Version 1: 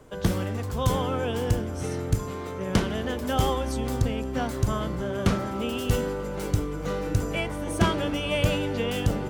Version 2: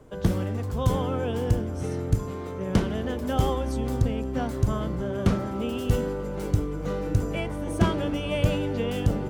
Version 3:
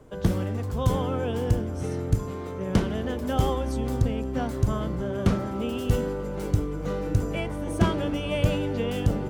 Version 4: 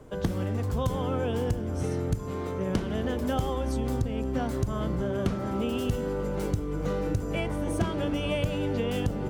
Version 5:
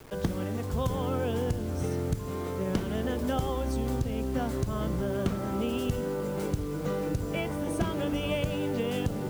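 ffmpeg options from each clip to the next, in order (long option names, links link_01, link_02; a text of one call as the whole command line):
ffmpeg -i in.wav -af "tiltshelf=frequency=830:gain=3.5,volume=-2dB" out.wav
ffmpeg -i in.wav -af anull out.wav
ffmpeg -i in.wav -af "acompressor=threshold=-26dB:ratio=6,volume=2dB" out.wav
ffmpeg -i in.wav -af "bandreject=frequency=50:width_type=h:width=6,bandreject=frequency=100:width_type=h:width=6,acrusher=bits=7:mix=0:aa=0.000001,volume=-1dB" out.wav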